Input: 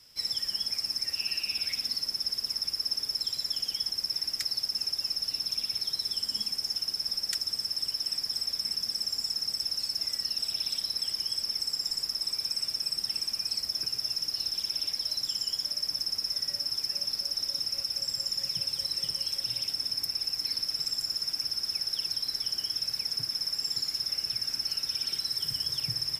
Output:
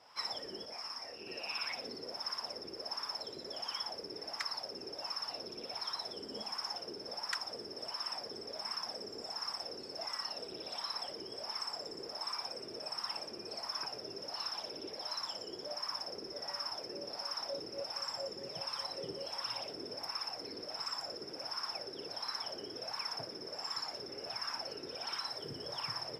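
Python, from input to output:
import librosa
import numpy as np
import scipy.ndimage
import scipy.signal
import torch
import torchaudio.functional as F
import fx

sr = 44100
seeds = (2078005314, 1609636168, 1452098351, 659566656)

y = fx.rider(x, sr, range_db=10, speed_s=0.5)
y = fx.wah_lfo(y, sr, hz=1.4, low_hz=380.0, high_hz=1100.0, q=4.0)
y = fx.detune_double(y, sr, cents=44, at=(0.65, 1.27))
y = y * 10.0 ** (17.5 / 20.0)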